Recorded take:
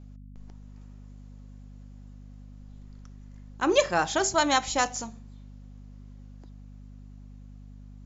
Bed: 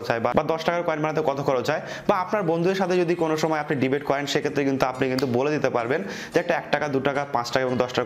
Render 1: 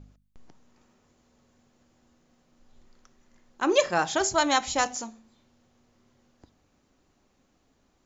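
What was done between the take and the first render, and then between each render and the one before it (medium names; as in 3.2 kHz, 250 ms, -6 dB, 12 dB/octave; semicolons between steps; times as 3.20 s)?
de-hum 50 Hz, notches 5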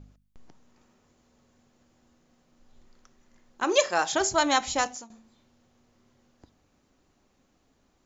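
3.64–4.12 s: tone controls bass -14 dB, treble +5 dB; 4.66–5.10 s: fade out equal-power, to -17.5 dB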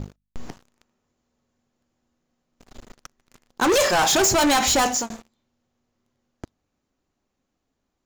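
peak limiter -15 dBFS, peak gain reduction 6.5 dB; waveshaping leveller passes 5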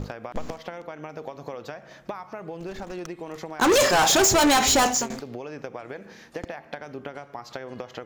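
add bed -14 dB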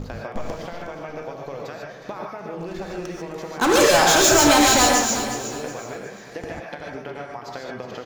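feedback delay 365 ms, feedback 34%, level -11 dB; gated-style reverb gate 170 ms rising, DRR -1 dB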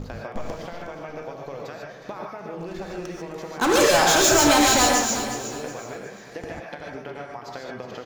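trim -2 dB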